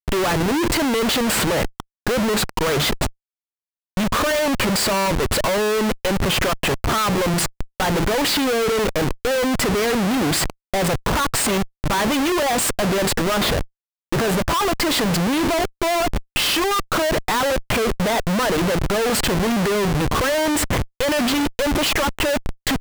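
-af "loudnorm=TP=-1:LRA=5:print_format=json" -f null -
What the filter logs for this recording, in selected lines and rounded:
"input_i" : "-20.1",
"input_tp" : "-11.9",
"input_lra" : "1.4",
"input_thresh" : "-30.1",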